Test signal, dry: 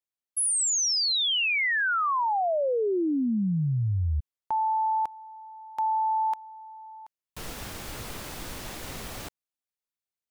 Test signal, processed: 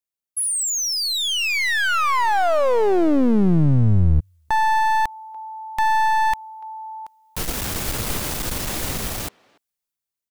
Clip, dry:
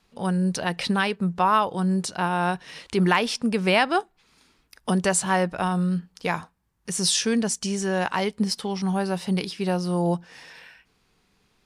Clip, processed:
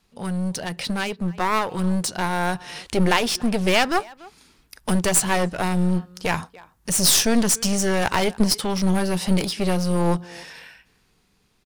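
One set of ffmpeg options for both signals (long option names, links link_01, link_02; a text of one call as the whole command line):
ffmpeg -i in.wav -filter_complex "[0:a]lowshelf=frequency=310:gain=4,asplit=2[link_01][link_02];[link_02]adelay=290,highpass=300,lowpass=3400,asoftclip=type=hard:threshold=-16.5dB,volume=-23dB[link_03];[link_01][link_03]amix=inputs=2:normalize=0,dynaudnorm=framelen=300:gausssize=11:maxgain=13dB,aeval=exprs='clip(val(0),-1,0.0668)':channel_layout=same,highshelf=frequency=5900:gain=7,volume=-2.5dB" out.wav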